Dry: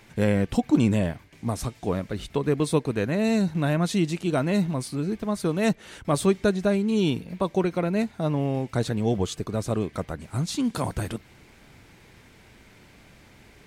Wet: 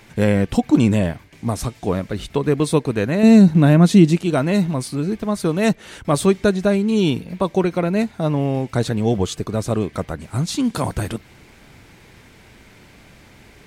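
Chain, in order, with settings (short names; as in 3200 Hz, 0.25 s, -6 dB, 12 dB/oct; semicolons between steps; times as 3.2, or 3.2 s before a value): 3.23–4.18 bell 220 Hz +8.5 dB 2 oct; gain +5.5 dB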